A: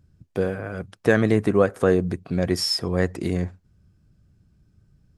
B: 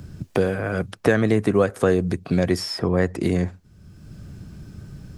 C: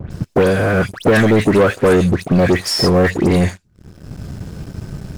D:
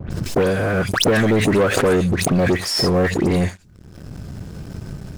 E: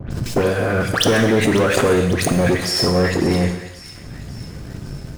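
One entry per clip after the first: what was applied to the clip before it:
three bands compressed up and down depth 70%; trim +1.5 dB
phase dispersion highs, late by 115 ms, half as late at 2.1 kHz; waveshaping leveller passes 3
swell ahead of each attack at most 46 dB/s; trim -4.5 dB
feedback echo behind a high-pass 545 ms, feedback 55%, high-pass 1.7 kHz, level -14.5 dB; gated-style reverb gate 390 ms falling, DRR 5.5 dB

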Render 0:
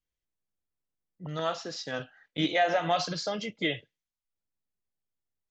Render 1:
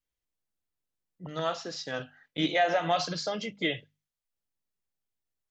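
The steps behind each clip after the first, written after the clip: hum notches 50/100/150/200/250 Hz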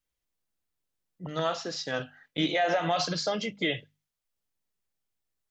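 peak limiter -20 dBFS, peak gain reduction 5.5 dB; trim +3 dB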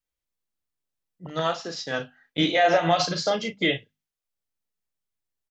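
doubling 36 ms -7.5 dB; upward expansion 1.5:1, over -44 dBFS; trim +6.5 dB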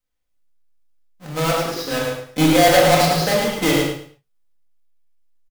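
square wave that keeps the level; feedback delay 108 ms, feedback 24%, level -4.5 dB; reverberation, pre-delay 4 ms, DRR -1.5 dB; trim -2.5 dB

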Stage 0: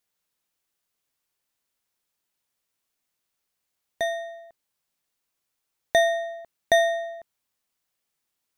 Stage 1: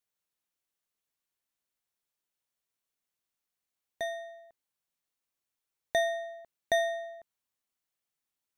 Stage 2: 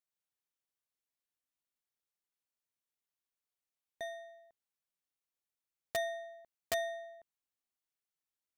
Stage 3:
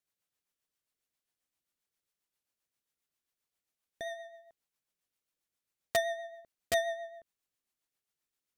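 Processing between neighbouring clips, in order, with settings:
band-stop 4.9 kHz, Q 24; trim -8 dB
integer overflow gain 17 dB; trim -7.5 dB
rotary cabinet horn 7.5 Hz; trim +7 dB

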